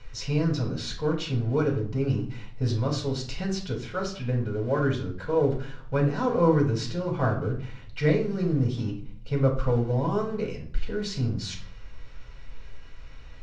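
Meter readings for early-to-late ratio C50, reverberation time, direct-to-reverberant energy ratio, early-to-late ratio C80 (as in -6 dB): 9.0 dB, 0.55 s, 0.5 dB, 13.0 dB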